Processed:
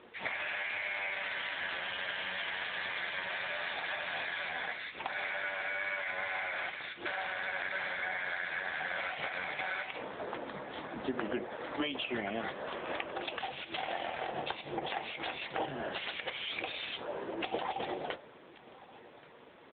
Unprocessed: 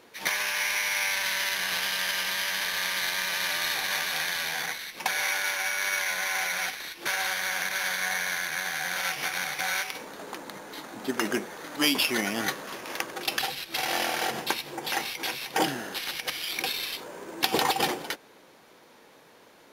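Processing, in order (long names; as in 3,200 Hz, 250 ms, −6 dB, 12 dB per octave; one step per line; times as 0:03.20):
dynamic equaliser 620 Hz, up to +8 dB, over −48 dBFS, Q 2.1
downward compressor 12 to 1, threshold −30 dBFS, peak gain reduction 14 dB
single-tap delay 1,130 ms −21.5 dB
on a send at −12 dB: convolution reverb RT60 0.40 s, pre-delay 5 ms
on the sum: AMR narrowband 7.95 kbit/s 8,000 Hz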